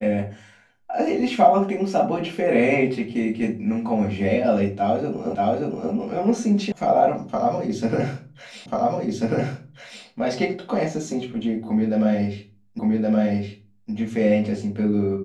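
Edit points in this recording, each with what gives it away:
0:05.35: the same again, the last 0.58 s
0:06.72: cut off before it has died away
0:08.66: the same again, the last 1.39 s
0:12.79: the same again, the last 1.12 s

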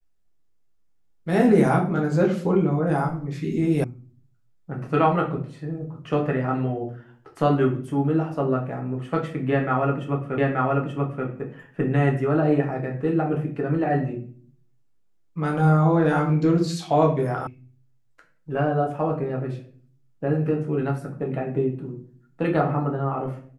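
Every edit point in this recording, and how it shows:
0:03.84: cut off before it has died away
0:10.38: the same again, the last 0.88 s
0:17.47: cut off before it has died away

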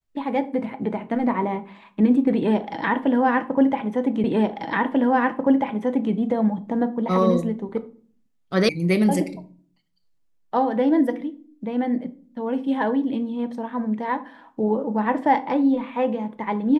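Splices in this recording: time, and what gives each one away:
0:04.24: the same again, the last 1.89 s
0:08.69: cut off before it has died away

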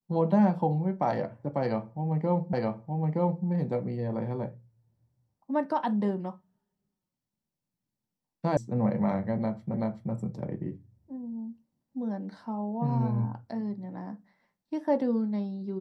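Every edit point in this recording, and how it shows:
0:02.53: the same again, the last 0.92 s
0:08.57: cut off before it has died away
0:09.74: the same again, the last 0.38 s

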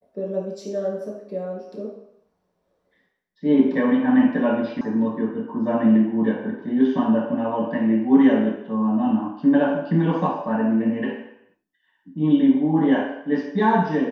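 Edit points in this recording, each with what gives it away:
0:04.81: cut off before it has died away

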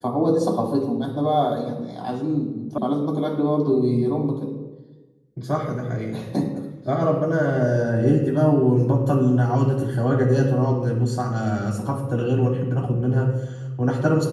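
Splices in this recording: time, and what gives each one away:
0:02.78: cut off before it has died away

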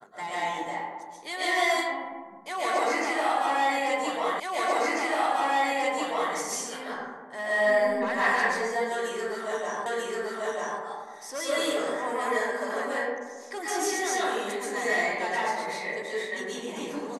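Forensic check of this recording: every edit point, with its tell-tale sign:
0:04.40: the same again, the last 1.94 s
0:09.86: the same again, the last 0.94 s

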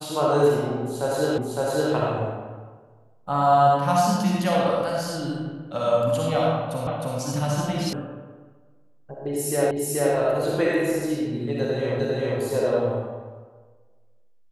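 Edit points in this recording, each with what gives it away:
0:01.38: the same again, the last 0.56 s
0:06.87: the same again, the last 0.31 s
0:07.93: cut off before it has died away
0:09.71: the same again, the last 0.43 s
0:12.00: the same again, the last 0.4 s

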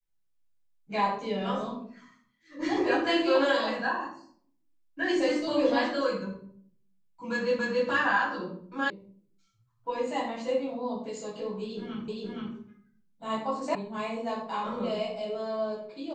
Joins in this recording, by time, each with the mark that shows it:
0:07.59: the same again, the last 0.28 s
0:08.90: cut off before it has died away
0:12.08: the same again, the last 0.47 s
0:13.75: cut off before it has died away

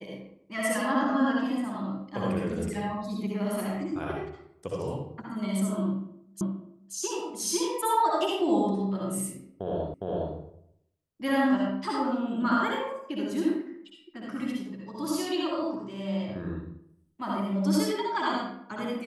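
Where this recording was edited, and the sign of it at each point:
0:06.41: the same again, the last 0.53 s
0:09.94: the same again, the last 0.41 s

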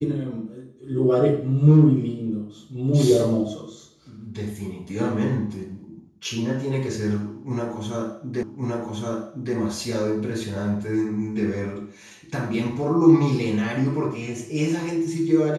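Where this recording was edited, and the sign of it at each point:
0:08.43: the same again, the last 1.12 s

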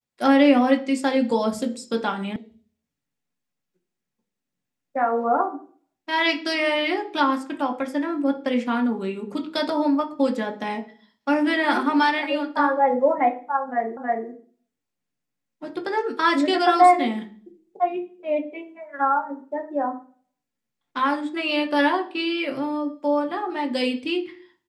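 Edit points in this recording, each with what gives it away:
0:02.36: cut off before it has died away
0:13.97: the same again, the last 0.32 s

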